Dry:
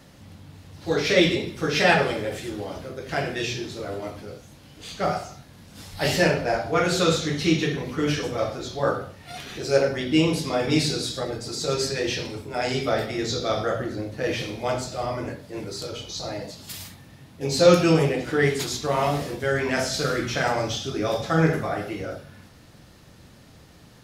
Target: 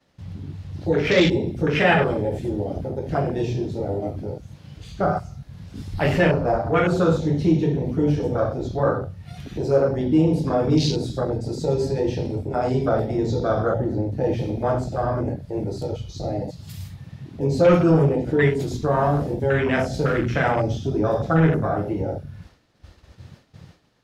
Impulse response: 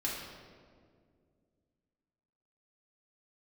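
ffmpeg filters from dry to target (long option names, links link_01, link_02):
-filter_complex "[0:a]lowshelf=frequency=170:gain=7,acrossover=split=270|6500[link_01][link_02][link_03];[link_02]acompressor=mode=upward:threshold=-34dB:ratio=2.5[link_04];[link_01][link_04][link_03]amix=inputs=3:normalize=0,asoftclip=type=tanh:threshold=-9.5dB,afwtdn=0.0447,asplit=2[link_05][link_06];[link_06]acompressor=threshold=-29dB:ratio=6,volume=1dB[link_07];[link_05][link_07]amix=inputs=2:normalize=0,agate=range=-33dB:threshold=-43dB:ratio=3:detection=peak"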